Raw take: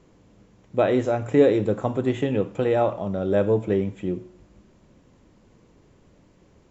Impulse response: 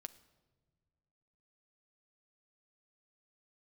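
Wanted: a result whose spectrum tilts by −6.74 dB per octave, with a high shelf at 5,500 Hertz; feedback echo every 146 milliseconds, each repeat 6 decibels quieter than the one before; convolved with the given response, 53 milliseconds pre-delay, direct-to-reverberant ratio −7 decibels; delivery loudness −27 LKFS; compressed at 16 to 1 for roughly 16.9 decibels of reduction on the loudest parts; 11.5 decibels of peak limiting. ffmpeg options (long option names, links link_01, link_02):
-filter_complex "[0:a]highshelf=frequency=5500:gain=-8.5,acompressor=threshold=-28dB:ratio=16,alimiter=level_in=3dB:limit=-24dB:level=0:latency=1,volume=-3dB,aecho=1:1:146|292|438|584|730|876:0.501|0.251|0.125|0.0626|0.0313|0.0157,asplit=2[link_01][link_02];[1:a]atrim=start_sample=2205,adelay=53[link_03];[link_02][link_03]afir=irnorm=-1:irlink=0,volume=12.5dB[link_04];[link_01][link_04]amix=inputs=2:normalize=0,volume=1dB"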